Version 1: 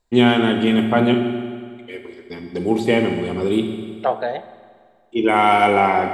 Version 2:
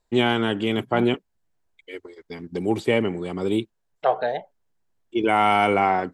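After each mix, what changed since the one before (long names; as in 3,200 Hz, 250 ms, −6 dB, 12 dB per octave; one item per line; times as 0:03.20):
reverb: off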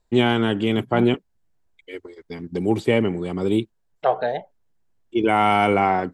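master: add low-shelf EQ 290 Hz +5.5 dB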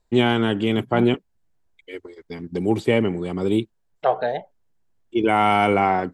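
nothing changed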